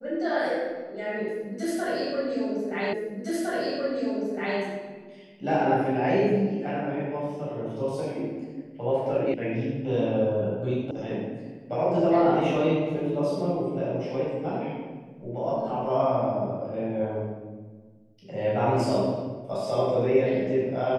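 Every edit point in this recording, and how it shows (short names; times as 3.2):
2.93 repeat of the last 1.66 s
9.34 sound cut off
10.91 sound cut off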